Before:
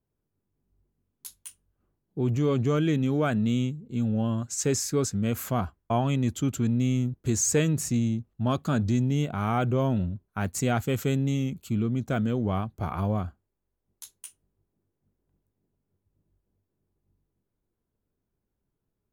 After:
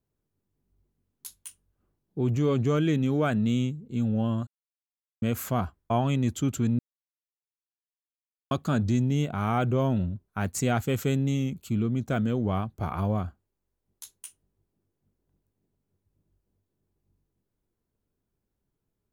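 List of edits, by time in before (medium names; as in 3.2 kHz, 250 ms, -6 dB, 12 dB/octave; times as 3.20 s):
4.47–5.22 s: mute
6.79–8.51 s: mute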